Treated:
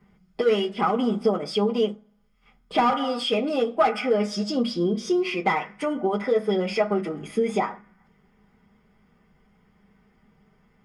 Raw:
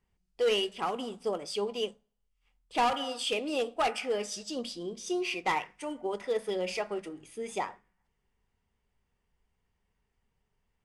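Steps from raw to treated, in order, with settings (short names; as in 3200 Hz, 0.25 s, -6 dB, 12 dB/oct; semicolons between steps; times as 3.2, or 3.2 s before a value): compressor 2.5:1, threshold -45 dBFS, peak gain reduction 14 dB; reverb RT60 0.10 s, pre-delay 3 ms, DRR -3.5 dB; gain +4.5 dB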